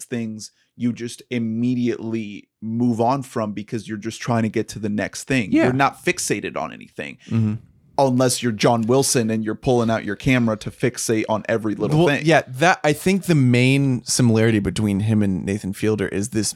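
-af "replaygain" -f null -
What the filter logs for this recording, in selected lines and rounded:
track_gain = +0.4 dB
track_peak = 0.544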